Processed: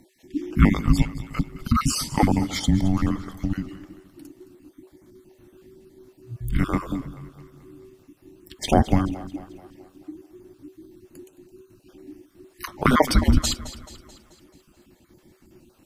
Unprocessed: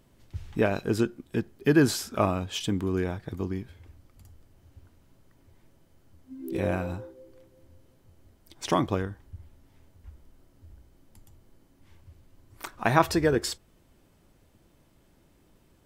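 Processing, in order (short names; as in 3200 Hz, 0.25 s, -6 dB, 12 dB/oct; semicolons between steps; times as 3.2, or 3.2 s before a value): random spectral dropouts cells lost 35%; frequency shift -380 Hz; split-band echo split 470 Hz, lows 0.155 s, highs 0.217 s, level -15.5 dB; gain +8.5 dB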